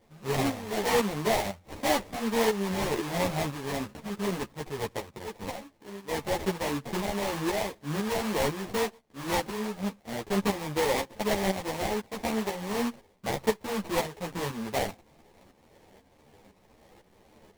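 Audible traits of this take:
a quantiser's noise floor 12 bits, dither triangular
tremolo saw up 2 Hz, depth 65%
aliases and images of a low sample rate 1,400 Hz, jitter 20%
a shimmering, thickened sound

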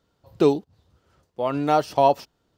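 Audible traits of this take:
background noise floor −71 dBFS
spectral slope −5.5 dB per octave

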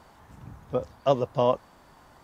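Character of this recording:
background noise floor −56 dBFS
spectral slope −6.0 dB per octave

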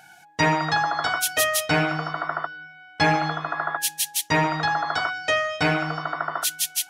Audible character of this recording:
background noise floor −50 dBFS
spectral slope −3.5 dB per octave

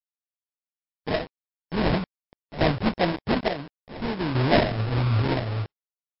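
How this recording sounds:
a quantiser's noise floor 6 bits, dither none
sample-and-hold tremolo 2.3 Hz, depth 80%
aliases and images of a low sample rate 1,300 Hz, jitter 20%
MP3

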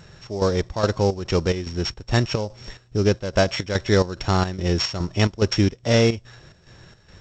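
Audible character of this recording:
a buzz of ramps at a fixed pitch in blocks of 8 samples
chopped level 2.4 Hz, depth 65%, duty 65%
G.722

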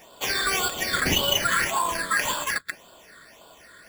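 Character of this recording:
aliases and images of a low sample rate 9,100 Hz, jitter 0%
phaser sweep stages 8, 1.8 Hz, lowest notch 800–1,900 Hz

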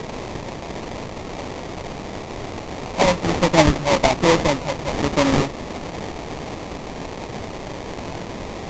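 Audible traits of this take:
a quantiser's noise floor 6 bits, dither triangular
phaser sweep stages 12, 1.2 Hz, lowest notch 290–1,200 Hz
aliases and images of a low sample rate 1,500 Hz, jitter 20%
Ogg Vorbis

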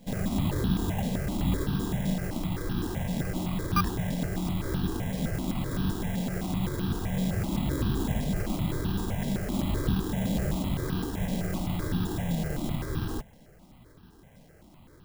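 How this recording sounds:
aliases and images of a low sample rate 3,600 Hz, jitter 0%
notches that jump at a steady rate 7.8 Hz 350–2,100 Hz

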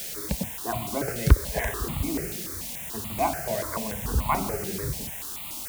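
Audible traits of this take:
a quantiser's noise floor 6 bits, dither triangular
notches that jump at a steady rate 6.9 Hz 280–1,600 Hz

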